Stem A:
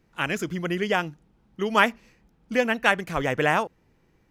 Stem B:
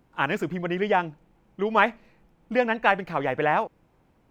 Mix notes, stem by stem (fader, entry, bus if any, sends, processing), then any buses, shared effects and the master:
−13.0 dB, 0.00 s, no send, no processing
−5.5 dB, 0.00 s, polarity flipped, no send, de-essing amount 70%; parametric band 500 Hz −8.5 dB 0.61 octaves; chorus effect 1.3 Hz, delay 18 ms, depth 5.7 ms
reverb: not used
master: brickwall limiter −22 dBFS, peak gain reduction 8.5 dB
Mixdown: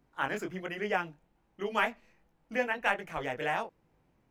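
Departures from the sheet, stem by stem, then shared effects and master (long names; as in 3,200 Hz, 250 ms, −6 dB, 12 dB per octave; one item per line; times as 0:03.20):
stem B: missing parametric band 500 Hz −8.5 dB 0.61 octaves
master: missing brickwall limiter −22 dBFS, peak gain reduction 8.5 dB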